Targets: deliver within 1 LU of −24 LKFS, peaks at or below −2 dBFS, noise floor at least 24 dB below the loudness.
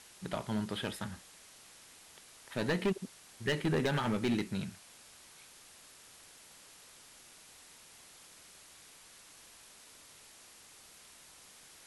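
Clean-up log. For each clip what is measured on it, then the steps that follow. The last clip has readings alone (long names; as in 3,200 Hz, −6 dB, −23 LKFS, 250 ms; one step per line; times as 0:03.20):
share of clipped samples 0.6%; peaks flattened at −25.5 dBFS; background noise floor −57 dBFS; target noise floor −59 dBFS; integrated loudness −35.0 LKFS; sample peak −25.5 dBFS; target loudness −24.0 LKFS
→ clipped peaks rebuilt −25.5 dBFS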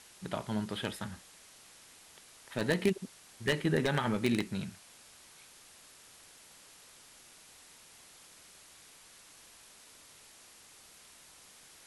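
share of clipped samples 0.0%; background noise floor −57 dBFS; target noise floor −58 dBFS
→ noise reduction from a noise print 6 dB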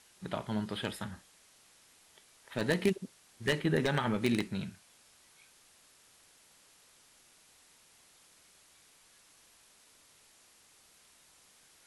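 background noise floor −63 dBFS; integrated loudness −33.5 LKFS; sample peak −16.5 dBFS; target loudness −24.0 LKFS
→ level +9.5 dB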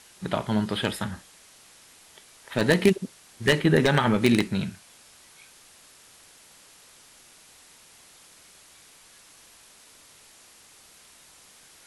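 integrated loudness −24.0 LKFS; sample peak −7.0 dBFS; background noise floor −54 dBFS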